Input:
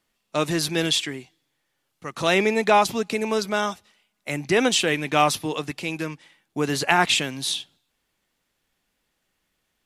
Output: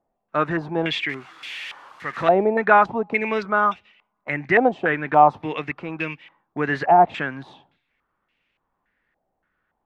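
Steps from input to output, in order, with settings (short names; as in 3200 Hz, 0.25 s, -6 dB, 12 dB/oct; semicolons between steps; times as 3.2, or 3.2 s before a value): 1.09–2.44 switching spikes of -21 dBFS; stepped low-pass 3.5 Hz 730–2600 Hz; gain -1 dB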